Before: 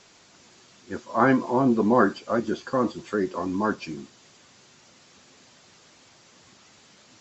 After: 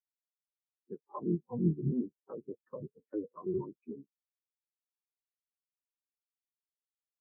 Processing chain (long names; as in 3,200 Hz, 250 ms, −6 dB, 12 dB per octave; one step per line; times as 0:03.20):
sub-harmonics by changed cycles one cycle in 3, inverted
high-pass filter 66 Hz 24 dB per octave
notch filter 650 Hz, Q 14
treble cut that deepens with the level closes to 420 Hz, closed at −19 dBFS
dynamic equaliser 280 Hz, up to −4 dB, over −36 dBFS, Q 2.8
downward compressor 10 to 1, threshold −32 dBFS, peak gain reduction 13 dB
every bin expanded away from the loudest bin 4 to 1
level +4 dB